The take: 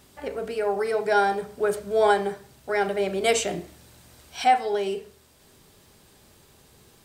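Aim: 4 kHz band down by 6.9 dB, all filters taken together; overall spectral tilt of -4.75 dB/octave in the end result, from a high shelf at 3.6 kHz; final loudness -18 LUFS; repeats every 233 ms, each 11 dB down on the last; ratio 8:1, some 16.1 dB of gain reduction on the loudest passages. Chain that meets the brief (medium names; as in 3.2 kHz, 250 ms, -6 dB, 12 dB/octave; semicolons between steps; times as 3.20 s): treble shelf 3.6 kHz -8 dB; peaking EQ 4 kHz -4.5 dB; compression 8:1, threshold -32 dBFS; feedback delay 233 ms, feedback 28%, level -11 dB; trim +18.5 dB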